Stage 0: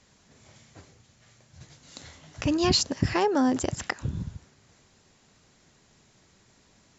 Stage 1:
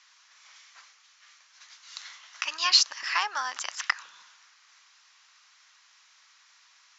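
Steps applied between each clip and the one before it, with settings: Chebyshev band-pass 1100–6000 Hz, order 3; gain +6 dB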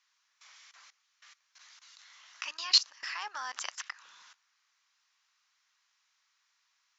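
level quantiser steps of 19 dB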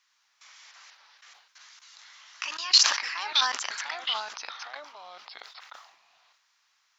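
echoes that change speed 0.102 s, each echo -3 st, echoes 2, each echo -6 dB; sustainer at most 77 dB/s; gain +4 dB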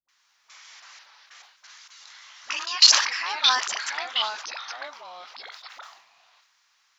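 dispersion highs, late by 87 ms, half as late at 410 Hz; gain +4 dB

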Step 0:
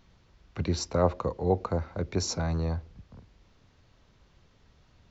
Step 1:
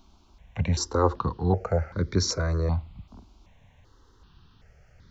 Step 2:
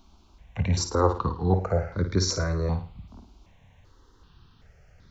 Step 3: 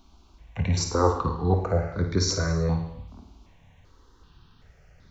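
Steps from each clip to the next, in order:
step phaser 2.6 Hz 500–2700 Hz; gain +6.5 dB
flutter echo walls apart 9.3 m, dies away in 0.37 s
non-linear reverb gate 0.33 s falling, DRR 6.5 dB

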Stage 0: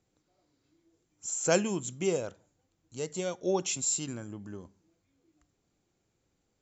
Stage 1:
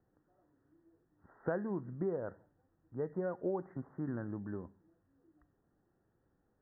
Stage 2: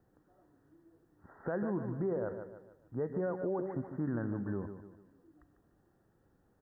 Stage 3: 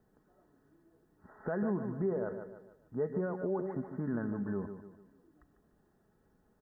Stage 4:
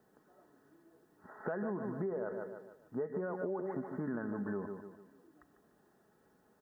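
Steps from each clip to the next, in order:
Chebyshev low-pass 1900 Hz, order 10; compressor 6:1, threshold -34 dBFS, peak gain reduction 12.5 dB; gain +1.5 dB
feedback echo 0.148 s, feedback 41%, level -10.5 dB; limiter -32 dBFS, peak gain reduction 8.5 dB; gain +5.5 dB
comb 4.7 ms, depth 44%
HPF 350 Hz 6 dB/oct; compressor 10:1, threshold -39 dBFS, peak gain reduction 8.5 dB; gain +5.5 dB

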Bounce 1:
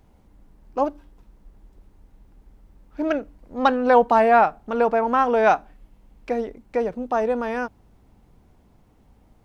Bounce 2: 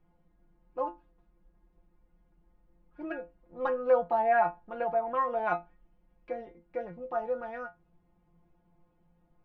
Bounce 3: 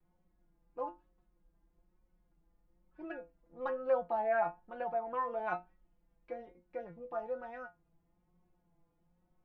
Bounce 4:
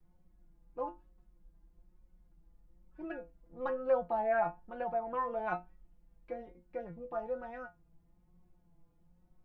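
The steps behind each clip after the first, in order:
LPF 2200 Hz 12 dB/oct; metallic resonator 170 Hz, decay 0.21 s, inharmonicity 0.002
vibrato 1.1 Hz 58 cents; gain -6.5 dB
low shelf 190 Hz +10.5 dB

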